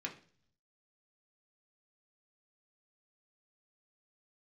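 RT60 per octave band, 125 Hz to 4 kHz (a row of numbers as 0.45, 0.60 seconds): 1.0, 0.70, 0.50, 0.40, 0.45, 0.55 seconds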